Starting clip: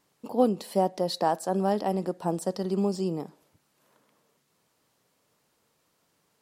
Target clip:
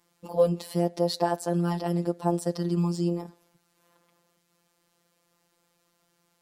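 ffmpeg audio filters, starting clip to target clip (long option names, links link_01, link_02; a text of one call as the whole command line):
ffmpeg -i in.wav -af "afftfilt=real='hypot(re,im)*cos(PI*b)':imag='0':win_size=1024:overlap=0.75,volume=4dB" out.wav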